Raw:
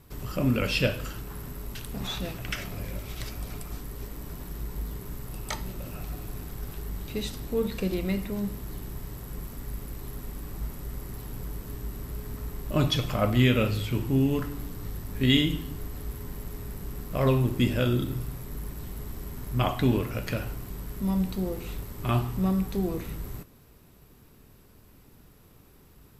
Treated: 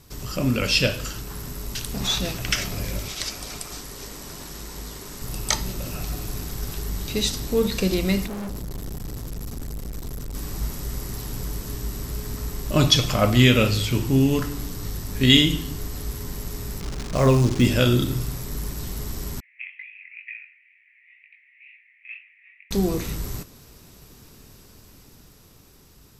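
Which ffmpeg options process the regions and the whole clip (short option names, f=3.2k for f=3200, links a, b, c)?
-filter_complex "[0:a]asettb=1/sr,asplit=3[a][b][c];[a]atrim=end=3.084[d];[b]atrim=start=3.08:end=5.22,asetpts=PTS-STARTPTS,afade=t=in:d=0.004:c=qsin,afade=t=out:st=2.136:d=0.004:c=qsin,lowpass=11k,lowshelf=f=180:g=-10.5,bandreject=f=60:t=h:w=6,bandreject=f=120:t=h:w=6,bandreject=f=180:t=h:w=6,bandreject=f=240:t=h:w=6,bandreject=f=300:t=h:w=6,bandreject=f=360:t=h:w=6,bandreject=f=420:t=h:w=6[e];[c]atrim=start=5.216[f];[d][e]acrossfade=d=0.004:c1=hsin:c2=qsin[g];[g][f]acrossfade=d=0.004:c1=qsin:c2=hsin,asettb=1/sr,asplit=3[h][i][j];[h]atrim=end=8.264[k];[i]atrim=start=8.26:end=10.35,asetpts=PTS-STARTPTS,afade=t=in:d=0.004:c=qsin,afade=t=out:st=2.086:d=0.004:c=qsin,lowshelf=f=400:g=8,aeval=exprs='(tanh(63.1*val(0)+0.4)-tanh(0.4))/63.1':c=same[l];[j]atrim=start=10.346[m];[k][l]acrossfade=d=0.004:c1=hsin:c2=qsin[n];[n][m]acrossfade=d=0.004:c1=qsin:c2=hsin,asettb=1/sr,asplit=3[o][p][q];[o]atrim=end=16.804[r];[p]atrim=start=16.8:end=17.65,asetpts=PTS-STARTPTS,afade=t=in:d=0.004:c=qsin,afade=t=out:st=0.846:d=0.004:c=qsin,lowpass=2.1k,acrusher=bits=8:dc=4:mix=0:aa=0.000001[s];[q]atrim=start=17.646[t];[r][s]acrossfade=d=0.004:c1=hsin:c2=qsin[u];[u][t]acrossfade=d=0.004:c1=qsin:c2=hsin,asettb=1/sr,asplit=3[v][w][x];[v]atrim=end=19.404[y];[w]atrim=start=19.4:end=22.71,asetpts=PTS-STARTPTS,afade=t=in:d=0.004:c=qsin,afade=t=out:st=3.306:d=0.004:c=qsin,asuperpass=centerf=2200:order=8:qfactor=3.1,flanger=delay=18.5:depth=5.2:speed=2.1[z];[x]atrim=start=22.706[aa];[y][z]acrossfade=d=0.004:c1=hsin:c2=qsin[ab];[ab][aa]acrossfade=d=0.004:c1=qsin:c2=hsin,equalizer=f=5.8k:t=o:w=1.4:g=11,dynaudnorm=f=280:g=11:m=4dB,volume=2dB"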